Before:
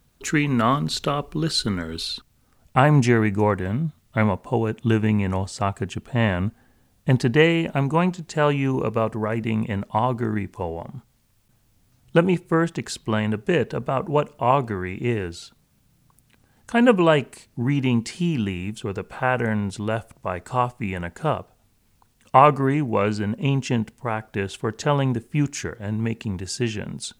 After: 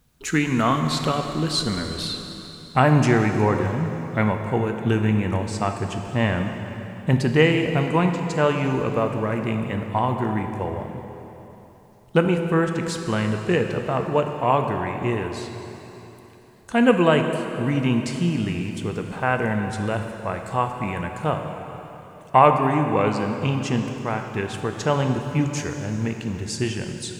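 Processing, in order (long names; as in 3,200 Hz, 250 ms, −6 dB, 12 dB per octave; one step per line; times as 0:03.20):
dense smooth reverb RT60 3.5 s, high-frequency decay 0.9×, DRR 4.5 dB
level −1 dB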